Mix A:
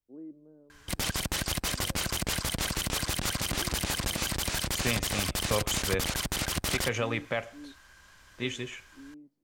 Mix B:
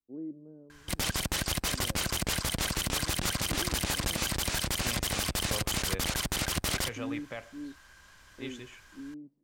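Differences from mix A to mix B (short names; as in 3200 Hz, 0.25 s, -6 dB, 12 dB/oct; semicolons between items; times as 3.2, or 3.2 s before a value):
first voice: add tilt -3 dB/oct; second voice -9.5 dB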